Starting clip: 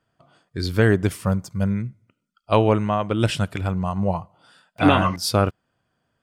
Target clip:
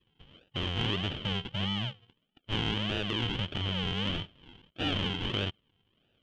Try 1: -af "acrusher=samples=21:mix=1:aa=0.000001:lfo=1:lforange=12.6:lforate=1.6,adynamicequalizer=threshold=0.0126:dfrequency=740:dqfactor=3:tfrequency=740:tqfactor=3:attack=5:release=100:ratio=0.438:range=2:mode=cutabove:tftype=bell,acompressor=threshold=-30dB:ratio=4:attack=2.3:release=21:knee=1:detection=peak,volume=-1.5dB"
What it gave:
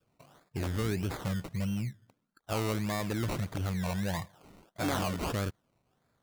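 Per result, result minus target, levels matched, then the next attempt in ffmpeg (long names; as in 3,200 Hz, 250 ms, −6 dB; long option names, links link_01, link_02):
4,000 Hz band −11.0 dB; sample-and-hold swept by an LFO: distortion −9 dB
-af "acrusher=samples=21:mix=1:aa=0.000001:lfo=1:lforange=12.6:lforate=1.6,adynamicequalizer=threshold=0.0126:dfrequency=740:dqfactor=3:tfrequency=740:tqfactor=3:attack=5:release=100:ratio=0.438:range=2:mode=cutabove:tftype=bell,lowpass=frequency=3100:width_type=q:width=16,acompressor=threshold=-30dB:ratio=4:attack=2.3:release=21:knee=1:detection=peak,volume=-1.5dB"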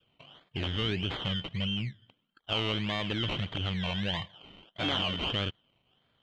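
sample-and-hold swept by an LFO: distortion −9 dB
-af "acrusher=samples=58:mix=1:aa=0.000001:lfo=1:lforange=34.8:lforate=1.6,adynamicequalizer=threshold=0.0126:dfrequency=740:dqfactor=3:tfrequency=740:tqfactor=3:attack=5:release=100:ratio=0.438:range=2:mode=cutabove:tftype=bell,lowpass=frequency=3100:width_type=q:width=16,acompressor=threshold=-30dB:ratio=4:attack=2.3:release=21:knee=1:detection=peak,volume=-1.5dB"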